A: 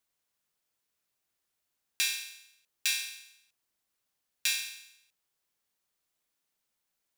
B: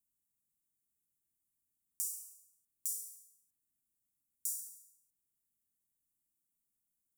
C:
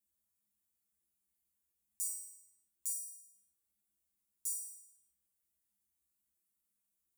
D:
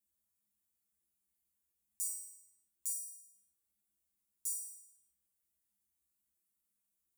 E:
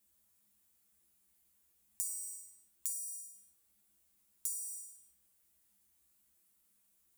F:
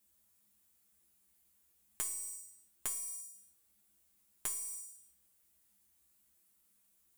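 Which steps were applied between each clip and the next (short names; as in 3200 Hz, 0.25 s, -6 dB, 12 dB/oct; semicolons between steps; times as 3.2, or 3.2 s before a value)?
inverse Chebyshev band-stop 680–3700 Hz, stop band 50 dB; gain -1 dB
resonator 68 Hz, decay 0.31 s, harmonics odd, mix 100%; gain +11.5 dB
nothing audible
compressor 10:1, threshold -46 dBFS, peak gain reduction 13 dB; gain +11 dB
tracing distortion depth 0.047 ms; gain +1 dB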